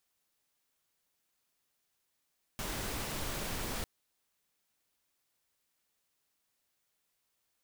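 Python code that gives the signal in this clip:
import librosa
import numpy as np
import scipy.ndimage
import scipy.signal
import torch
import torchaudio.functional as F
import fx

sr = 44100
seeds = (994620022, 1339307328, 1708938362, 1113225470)

y = fx.noise_colour(sr, seeds[0], length_s=1.25, colour='pink', level_db=-37.5)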